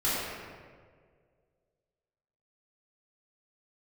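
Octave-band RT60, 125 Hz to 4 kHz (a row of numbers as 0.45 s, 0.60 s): 2.2 s, 1.9 s, 2.2 s, 1.5 s, 1.4 s, 1.0 s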